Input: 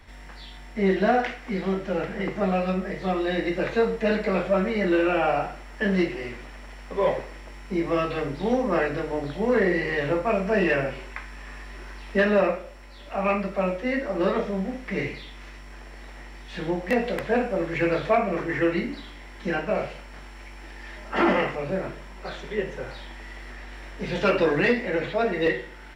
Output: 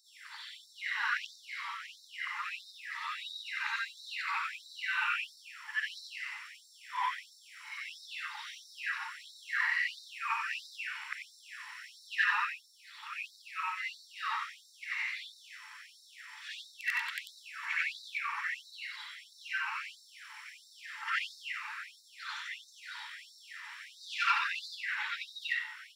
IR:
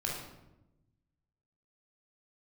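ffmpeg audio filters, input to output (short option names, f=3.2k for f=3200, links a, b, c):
-af "afftfilt=real='re':imag='-im':win_size=8192:overlap=0.75,afftfilt=real='re*gte(b*sr/1024,810*pow(3700/810,0.5+0.5*sin(2*PI*1.5*pts/sr)))':imag='im*gte(b*sr/1024,810*pow(3700/810,0.5+0.5*sin(2*PI*1.5*pts/sr)))':win_size=1024:overlap=0.75,volume=4dB"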